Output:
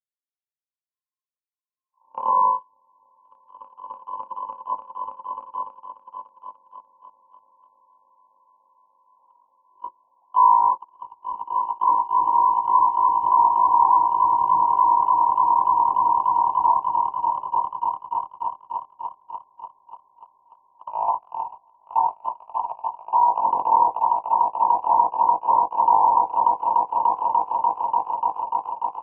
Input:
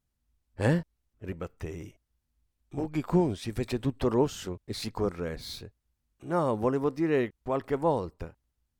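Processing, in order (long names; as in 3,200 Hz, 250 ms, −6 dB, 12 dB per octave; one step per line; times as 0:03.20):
mu-law and A-law mismatch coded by A
comb filter 5.8 ms, depth 60%
on a send: echo that builds up and dies away 89 ms, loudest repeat 8, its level −5 dB
on the sum: low-pass that shuts in the quiet parts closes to 990 Hz, open at −15.5 dBFS
low-shelf EQ 370 Hz +4 dB
voice inversion scrambler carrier 3,500 Hz
low-shelf EQ 170 Hz −8.5 dB
change of speed 0.303×
noise gate −18 dBFS, range −34 dB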